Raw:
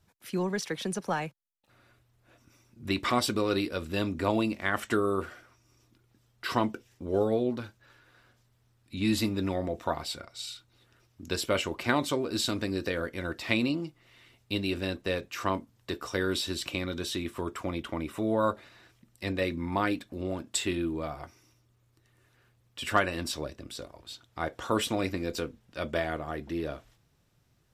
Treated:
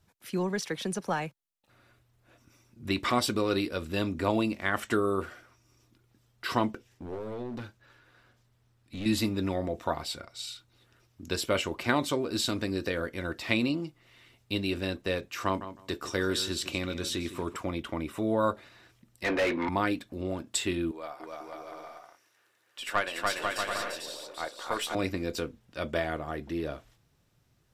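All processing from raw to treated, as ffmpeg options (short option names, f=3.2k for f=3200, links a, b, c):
-filter_complex "[0:a]asettb=1/sr,asplit=3[a][b][c];[a]atrim=end=6.704[d];[b]atrim=start=6.7:end=9.06,asetpts=PTS-STARTPTS,afade=t=in:d=0.004:c=qsin,afade=t=out:st=2.356:d=0.004:c=qsin,acompressor=threshold=-29dB:ratio=10:attack=3.2:release=140:knee=1:detection=peak,aeval=exprs='clip(val(0),-1,0.015)':c=same,highshelf=f=5.9k:g=-4[e];[c]atrim=start=9.056[f];[d][e]acrossfade=d=0.004:c1=hsin:c2=qsin[g];[g][f]acrossfade=d=0.004:c1=qsin:c2=hsin,asettb=1/sr,asplit=3[h][i][j];[h]atrim=end=15.454[k];[i]atrim=start=15.45:end=17.57,asetpts=PTS-STARTPTS,afade=t=in:d=0.004:c=qsin,afade=t=out:st=2.116:d=0.004:c=qsin,equalizer=f=6.9k:w=1.3:g=3.5,asplit=2[l][m];[m]adelay=157,lowpass=f=4.4k:p=1,volume=-12dB,asplit=2[n][o];[o]adelay=157,lowpass=f=4.4k:p=1,volume=0.18[p];[l][n][p]amix=inputs=3:normalize=0,atrim=end_sample=93492[q];[j]atrim=start=17.566[r];[k][q]acrossfade=d=0.004:c1=hsin:c2=qsin[s];[s][r]acrossfade=d=0.004:c1=qsin:c2=hsin,asettb=1/sr,asplit=3[t][u][v];[t]atrim=end=19.244[w];[u]atrim=start=19.24:end=19.69,asetpts=PTS-STARTPTS,afade=t=in:d=0.004:c=qsin,afade=t=out:st=0.446:d=0.004:c=qsin,acrossover=split=320 3100:gain=0.2 1 0.158[x][y][z];[x][y][z]amix=inputs=3:normalize=0,asplit=2[aa][ab];[ab]highpass=f=720:p=1,volume=27dB,asoftclip=type=tanh:threshold=-19dB[ac];[aa][ac]amix=inputs=2:normalize=0,lowpass=f=2.6k:p=1,volume=-6dB[ad];[v]atrim=start=19.686[ae];[w][ad]acrossfade=d=0.004:c1=hsin:c2=qsin[af];[af][ae]acrossfade=d=0.004:c1=qsin:c2=hsin,asettb=1/sr,asplit=3[ag][ah][ai];[ag]atrim=end=20.914[aj];[ah]atrim=start=20.91:end=24.95,asetpts=PTS-STARTPTS,afade=t=in:d=0.004:c=qsin,afade=t=out:st=4.036:d=0.004:c=qsin,highpass=520,aeval=exprs='(tanh(5.62*val(0)+0.5)-tanh(0.5))/5.62':c=same,aecho=1:1:290|493|635.1|734.6|804.2|852.9|887.1|910.9:0.794|0.631|0.501|0.398|0.316|0.251|0.2|0.158,atrim=end_sample=178164[ak];[ai]atrim=start=24.946[al];[aj][ak]acrossfade=d=0.004:c1=hsin:c2=qsin[am];[am][al]acrossfade=d=0.004:c1=qsin:c2=hsin"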